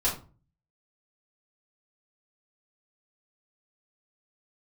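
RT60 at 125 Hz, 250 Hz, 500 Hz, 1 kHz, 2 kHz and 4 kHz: 0.70, 0.50, 0.35, 0.35, 0.25, 0.25 s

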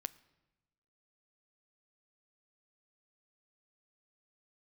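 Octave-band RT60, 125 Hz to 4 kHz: 1.3, 1.3, 1.2, 1.0, 0.95, 0.80 s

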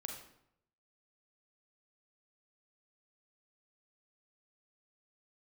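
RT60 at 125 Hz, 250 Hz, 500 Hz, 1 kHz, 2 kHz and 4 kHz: 0.95, 0.80, 0.75, 0.75, 0.65, 0.55 s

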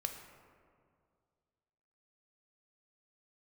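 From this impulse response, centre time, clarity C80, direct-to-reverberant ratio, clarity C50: 34 ms, 8.0 dB, 4.5 dB, 7.0 dB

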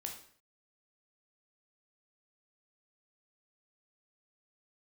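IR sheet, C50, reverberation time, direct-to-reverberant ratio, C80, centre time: 7.0 dB, 0.55 s, 1.5 dB, 11.0 dB, 23 ms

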